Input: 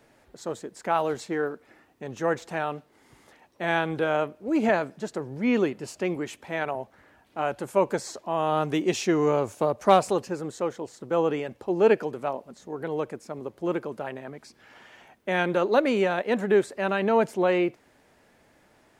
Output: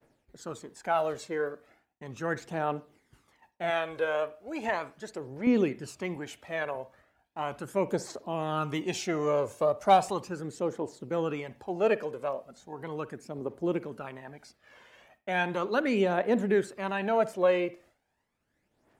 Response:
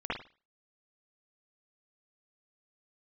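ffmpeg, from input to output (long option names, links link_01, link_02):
-filter_complex "[0:a]asettb=1/sr,asplit=3[link_01][link_02][link_03];[link_01]atrim=end=3.704[link_04];[link_02]atrim=start=3.7:end=5.47,asetpts=PTS-STARTPTS,afade=type=in:duration=0.004:curve=qsin,afade=type=out:start_time=1.766:duration=0.004:curve=qsin,equalizer=frequency=180:width_type=o:width=1.5:gain=-10.5[link_05];[link_03]atrim=start=5.466[link_06];[link_04][link_05]acrossfade=duration=0.004:curve1=hsin:curve2=qsin[link_07];[link_07][link_06]acrossfade=duration=0.004:curve1=qsin:curve2=hsin,aphaser=in_gain=1:out_gain=1:delay=2:decay=0.53:speed=0.37:type=triangular,agate=range=-33dB:threshold=-49dB:ratio=3:detection=peak,asplit=2[link_08][link_09];[1:a]atrim=start_sample=2205[link_10];[link_09][link_10]afir=irnorm=-1:irlink=0,volume=-22.5dB[link_11];[link_08][link_11]amix=inputs=2:normalize=0,volume=-5.5dB"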